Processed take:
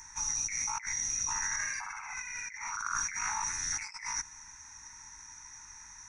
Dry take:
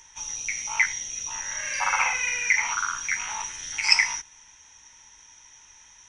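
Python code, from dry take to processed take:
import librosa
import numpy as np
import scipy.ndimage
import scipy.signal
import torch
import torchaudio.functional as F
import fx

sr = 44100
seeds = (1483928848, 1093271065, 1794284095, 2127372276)

y = fx.over_compress(x, sr, threshold_db=-34.0, ratio=-1.0)
y = fx.fixed_phaser(y, sr, hz=1300.0, stages=4)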